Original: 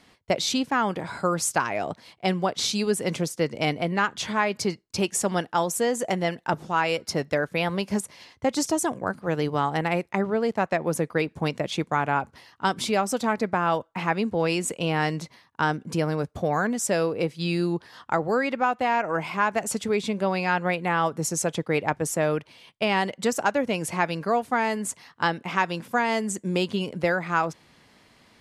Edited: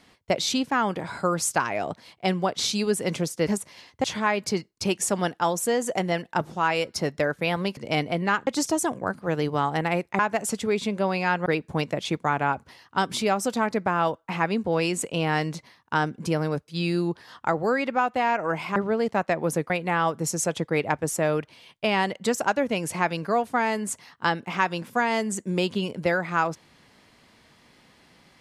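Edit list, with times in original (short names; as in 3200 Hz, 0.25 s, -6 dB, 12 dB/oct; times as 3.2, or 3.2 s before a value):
3.47–4.17 swap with 7.9–8.47
10.19–11.13 swap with 19.41–20.68
16.35–17.33 cut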